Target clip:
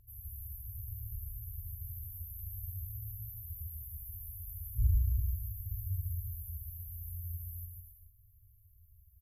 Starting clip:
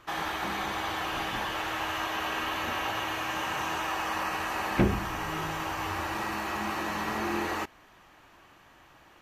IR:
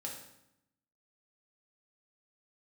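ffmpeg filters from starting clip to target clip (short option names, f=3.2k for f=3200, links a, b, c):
-filter_complex "[0:a]afftfilt=real='re*(1-between(b*sr/4096,110,11000))':imag='im*(1-between(b*sr/4096,110,11000))':win_size=4096:overlap=0.75,asplit=2[a][b];[b]aecho=0:1:150|262.5|346.9|410.2|457.6:0.631|0.398|0.251|0.158|0.1[c];[a][c]amix=inputs=2:normalize=0,volume=5dB"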